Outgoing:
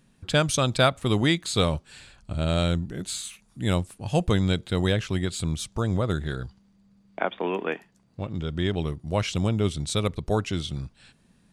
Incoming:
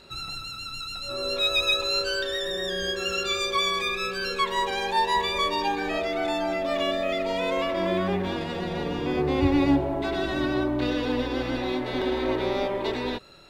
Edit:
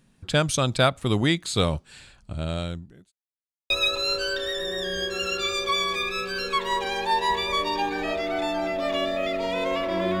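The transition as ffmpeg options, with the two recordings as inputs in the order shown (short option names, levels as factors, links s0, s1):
-filter_complex "[0:a]apad=whole_dur=10.2,atrim=end=10.2,asplit=2[s0][s1];[s0]atrim=end=3.12,asetpts=PTS-STARTPTS,afade=t=out:st=2.08:d=1.04[s2];[s1]atrim=start=3.12:end=3.7,asetpts=PTS-STARTPTS,volume=0[s3];[1:a]atrim=start=1.56:end=8.06,asetpts=PTS-STARTPTS,afade=t=in:d=0.004:c=hsin[s4];[s2][s3][s4]concat=n=3:v=0:a=1"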